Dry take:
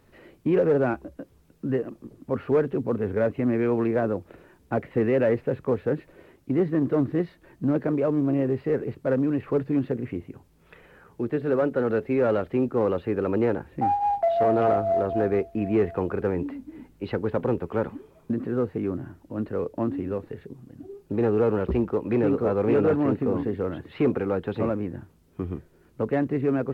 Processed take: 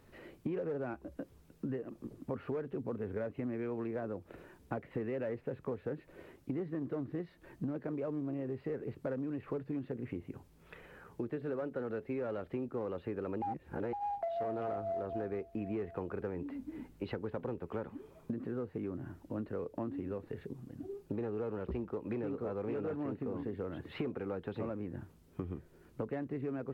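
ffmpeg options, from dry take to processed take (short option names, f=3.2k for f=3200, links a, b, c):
-filter_complex "[0:a]asplit=3[a][b][c];[a]atrim=end=13.422[d];[b]atrim=start=13.418:end=13.932,asetpts=PTS-STARTPTS,areverse[e];[c]atrim=start=13.928[f];[d][e]acrossfade=d=0.004:c1=hsin:c2=hsin[g];[g][f]acrossfade=d=0.004:c1=hsin:c2=hsin,acompressor=threshold=-33dB:ratio=6,volume=-2.5dB"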